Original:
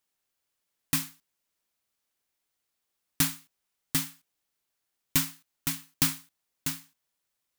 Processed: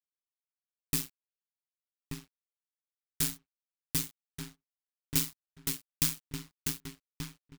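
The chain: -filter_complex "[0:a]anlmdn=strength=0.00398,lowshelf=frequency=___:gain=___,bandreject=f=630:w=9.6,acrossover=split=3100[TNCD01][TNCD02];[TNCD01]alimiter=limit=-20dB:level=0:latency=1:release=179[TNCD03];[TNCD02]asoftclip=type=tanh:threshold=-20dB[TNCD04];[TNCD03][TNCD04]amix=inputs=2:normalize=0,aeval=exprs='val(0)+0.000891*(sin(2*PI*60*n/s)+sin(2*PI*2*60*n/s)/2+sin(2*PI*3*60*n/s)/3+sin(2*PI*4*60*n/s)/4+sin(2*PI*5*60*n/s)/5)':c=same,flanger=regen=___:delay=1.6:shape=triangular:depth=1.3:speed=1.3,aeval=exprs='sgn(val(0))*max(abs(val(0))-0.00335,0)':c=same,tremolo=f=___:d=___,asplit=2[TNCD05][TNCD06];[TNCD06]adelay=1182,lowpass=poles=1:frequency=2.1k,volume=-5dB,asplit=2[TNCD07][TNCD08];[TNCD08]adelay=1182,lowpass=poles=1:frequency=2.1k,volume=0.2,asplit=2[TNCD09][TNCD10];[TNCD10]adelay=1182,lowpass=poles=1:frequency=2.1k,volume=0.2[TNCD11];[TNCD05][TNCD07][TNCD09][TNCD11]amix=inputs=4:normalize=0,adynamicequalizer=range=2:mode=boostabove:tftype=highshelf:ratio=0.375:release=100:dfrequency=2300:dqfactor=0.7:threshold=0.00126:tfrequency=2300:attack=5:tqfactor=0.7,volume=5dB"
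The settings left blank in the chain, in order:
270, 10.5, -59, 130, 0.824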